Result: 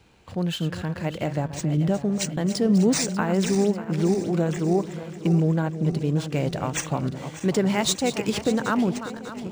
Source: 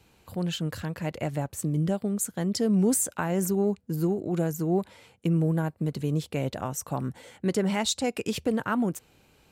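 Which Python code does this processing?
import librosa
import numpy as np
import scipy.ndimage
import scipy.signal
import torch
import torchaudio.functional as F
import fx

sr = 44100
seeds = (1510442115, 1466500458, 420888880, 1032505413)

y = fx.reverse_delay_fb(x, sr, ms=296, feedback_pct=72, wet_db=-11.5)
y = fx.high_shelf(y, sr, hz=8400.0, db=10.0, at=(6.18, 8.68))
y = np.interp(np.arange(len(y)), np.arange(len(y))[::3], y[::3])
y = F.gain(torch.from_numpy(y), 3.5).numpy()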